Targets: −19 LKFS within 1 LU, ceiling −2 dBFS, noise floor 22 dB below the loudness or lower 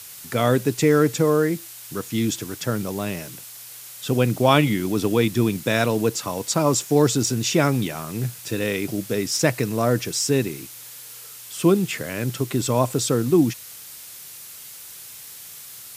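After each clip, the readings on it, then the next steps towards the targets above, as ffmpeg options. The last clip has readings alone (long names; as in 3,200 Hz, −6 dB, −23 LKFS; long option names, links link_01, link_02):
background noise floor −40 dBFS; target noise floor −44 dBFS; integrated loudness −22.0 LKFS; sample peak −2.0 dBFS; target loudness −19.0 LKFS
→ -af "afftdn=noise_reduction=6:noise_floor=-40"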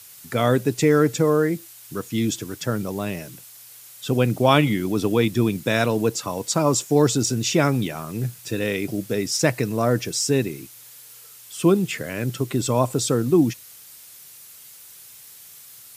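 background noise floor −45 dBFS; integrated loudness −22.0 LKFS; sample peak −2.0 dBFS; target loudness −19.0 LKFS
→ -af "volume=3dB,alimiter=limit=-2dB:level=0:latency=1"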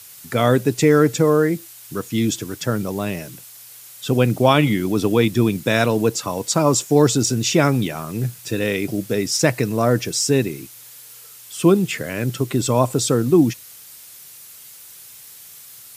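integrated loudness −19.0 LKFS; sample peak −2.0 dBFS; background noise floor −42 dBFS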